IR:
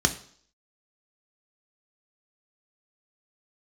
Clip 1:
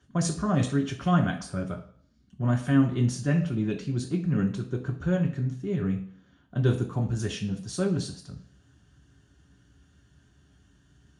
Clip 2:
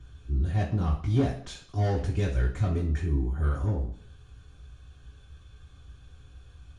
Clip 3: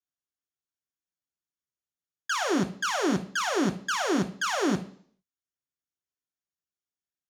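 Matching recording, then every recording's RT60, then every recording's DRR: 3; 0.55 s, 0.55 s, 0.55 s; 0.5 dB, -6.0 dB, 5.5 dB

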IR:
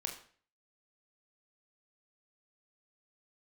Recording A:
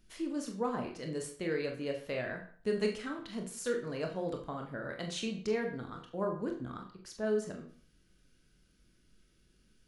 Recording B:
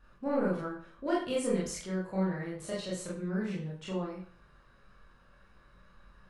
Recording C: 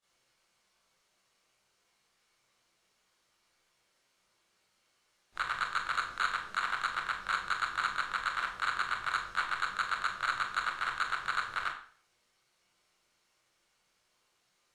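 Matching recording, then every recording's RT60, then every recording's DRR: A; 0.45 s, 0.45 s, 0.45 s; 2.0 dB, -7.0 dB, -15.0 dB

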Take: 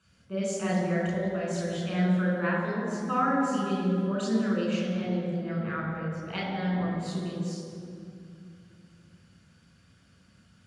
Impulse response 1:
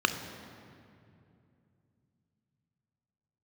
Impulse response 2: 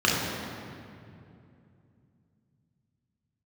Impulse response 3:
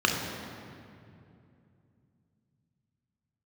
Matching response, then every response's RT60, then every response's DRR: 2; 2.6 s, 2.6 s, 2.6 s; 7.0 dB, -5.0 dB, 0.0 dB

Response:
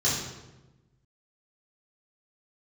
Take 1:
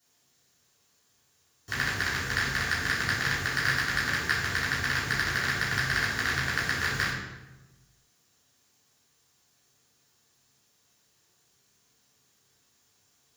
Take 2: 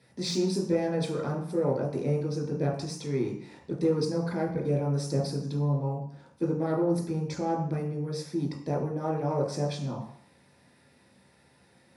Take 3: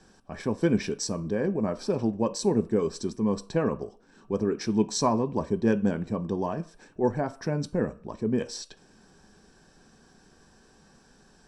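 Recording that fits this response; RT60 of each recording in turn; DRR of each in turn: 1; 1.1 s, 0.60 s, 0.40 s; -9.0 dB, -3.0 dB, 9.0 dB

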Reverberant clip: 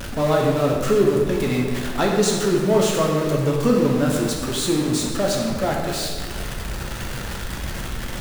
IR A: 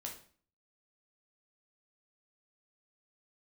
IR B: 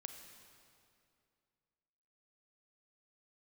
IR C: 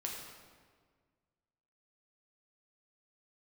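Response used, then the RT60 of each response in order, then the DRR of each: C; 0.45 s, 2.5 s, 1.7 s; 0.0 dB, 5.5 dB, -1.5 dB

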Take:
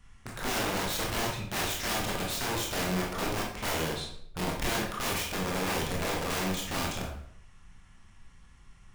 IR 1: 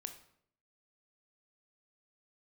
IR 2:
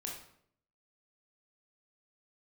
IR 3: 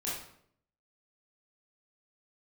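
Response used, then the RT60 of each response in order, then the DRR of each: 2; 0.65 s, 0.65 s, 0.65 s; 7.0 dB, -1.5 dB, -7.5 dB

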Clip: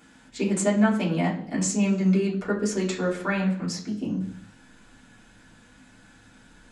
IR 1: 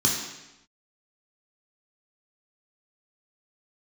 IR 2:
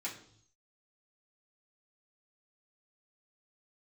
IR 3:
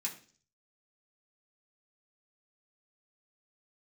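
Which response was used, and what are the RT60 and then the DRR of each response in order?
2; 0.95 s, 0.60 s, 0.45 s; -2.5 dB, -7.0 dB, -4.0 dB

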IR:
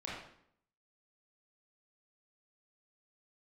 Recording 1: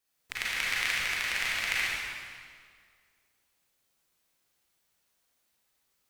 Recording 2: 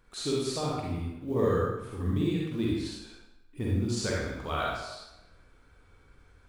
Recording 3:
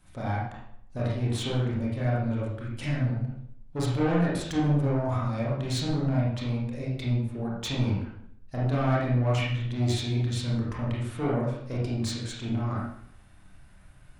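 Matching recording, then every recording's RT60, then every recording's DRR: 3; 2.0 s, 0.95 s, 0.65 s; -7.5 dB, -5.0 dB, -6.5 dB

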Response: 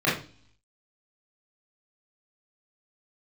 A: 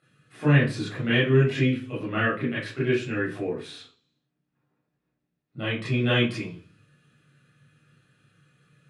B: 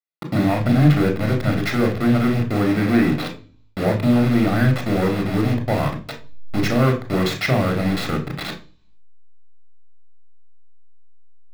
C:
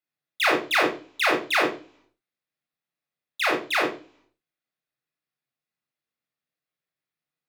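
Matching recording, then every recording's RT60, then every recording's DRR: A; 0.40 s, 0.40 s, 0.40 s; -9.0 dB, 3.5 dB, -1.0 dB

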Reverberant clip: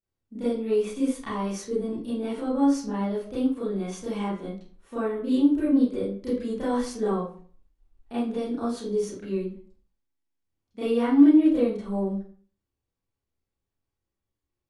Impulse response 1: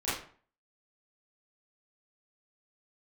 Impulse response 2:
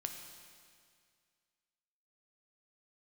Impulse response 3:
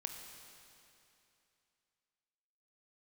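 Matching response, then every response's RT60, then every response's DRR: 1; 0.45 s, 2.1 s, 2.8 s; -12.5 dB, 4.0 dB, 3.5 dB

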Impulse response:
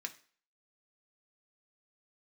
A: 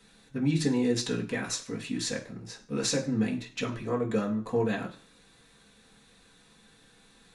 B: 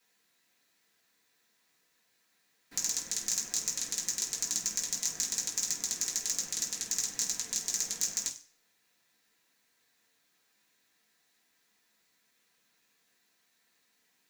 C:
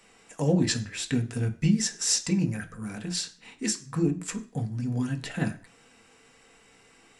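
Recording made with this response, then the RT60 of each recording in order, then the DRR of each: C; 0.45 s, 0.45 s, 0.45 s; -3.0 dB, -7.5 dB, 3.5 dB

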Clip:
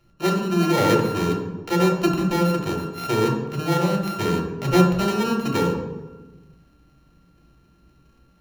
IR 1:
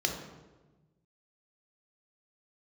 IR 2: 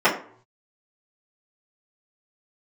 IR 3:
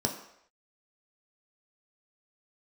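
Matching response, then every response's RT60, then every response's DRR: 1; 1.2 s, 0.55 s, no single decay rate; 1.5 dB, -11.5 dB, 1.5 dB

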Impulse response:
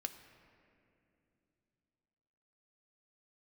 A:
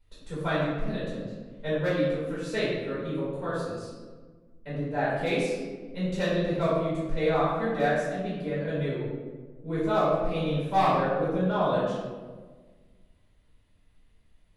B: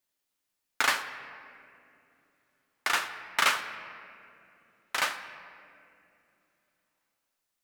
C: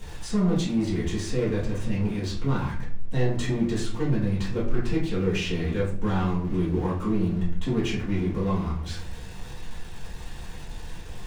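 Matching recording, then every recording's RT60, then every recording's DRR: B; 1.5 s, 2.8 s, 0.50 s; -11.0 dB, 6.0 dB, -9.0 dB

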